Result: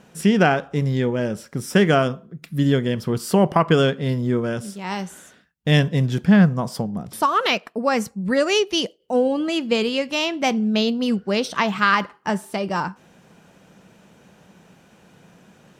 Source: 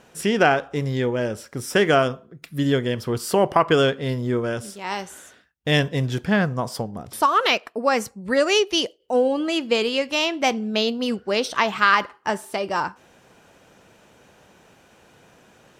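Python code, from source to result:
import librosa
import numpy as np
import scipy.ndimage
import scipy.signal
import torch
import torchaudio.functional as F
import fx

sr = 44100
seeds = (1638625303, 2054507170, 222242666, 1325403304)

y = fx.peak_eq(x, sr, hz=180.0, db=11.5, octaves=0.75)
y = y * 10.0 ** (-1.0 / 20.0)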